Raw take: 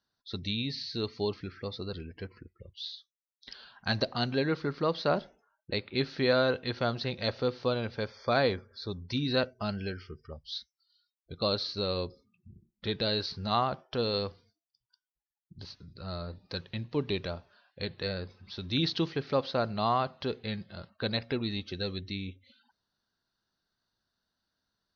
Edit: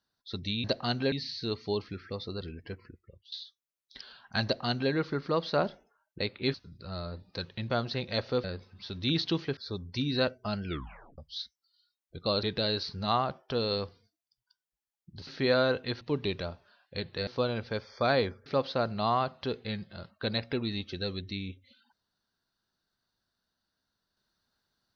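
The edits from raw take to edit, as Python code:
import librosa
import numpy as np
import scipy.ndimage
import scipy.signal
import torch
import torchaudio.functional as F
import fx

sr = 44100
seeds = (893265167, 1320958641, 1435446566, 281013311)

y = fx.edit(x, sr, fx.fade_out_to(start_s=2.25, length_s=0.59, curve='qsin', floor_db=-17.5),
    fx.duplicate(start_s=3.96, length_s=0.48, to_s=0.64),
    fx.swap(start_s=6.06, length_s=0.74, other_s=15.7, other_length_s=1.16),
    fx.swap(start_s=7.54, length_s=1.19, other_s=18.12, other_length_s=1.13),
    fx.tape_stop(start_s=9.81, length_s=0.53),
    fx.cut(start_s=11.59, length_s=1.27), tone=tone)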